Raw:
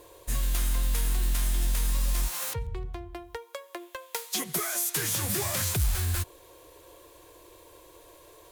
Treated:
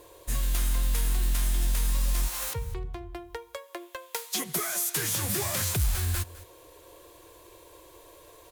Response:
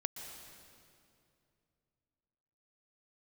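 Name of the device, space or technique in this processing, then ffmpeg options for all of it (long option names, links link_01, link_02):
ducked delay: -filter_complex "[0:a]asplit=3[link_01][link_02][link_03];[link_02]adelay=207,volume=-7dB[link_04];[link_03]apad=whole_len=384788[link_05];[link_04][link_05]sidechaincompress=threshold=-44dB:ratio=3:attack=16:release=636[link_06];[link_01][link_06]amix=inputs=2:normalize=0"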